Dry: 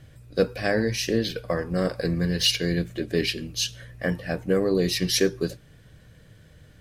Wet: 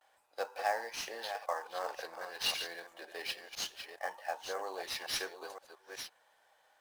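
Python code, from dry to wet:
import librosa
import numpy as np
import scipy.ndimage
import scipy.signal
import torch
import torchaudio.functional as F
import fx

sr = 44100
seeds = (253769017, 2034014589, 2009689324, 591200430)

p1 = fx.reverse_delay(x, sr, ms=507, wet_db=-8)
p2 = fx.vibrato(p1, sr, rate_hz=0.33, depth_cents=41.0)
p3 = fx.ladder_highpass(p2, sr, hz=780.0, resonance_pct=75)
p4 = fx.peak_eq(p3, sr, hz=2000.0, db=-3.0, octaves=0.77)
p5 = fx.sample_hold(p4, sr, seeds[0], rate_hz=7300.0, jitter_pct=20)
y = p4 + (p5 * 10.0 ** (-6.5 / 20.0))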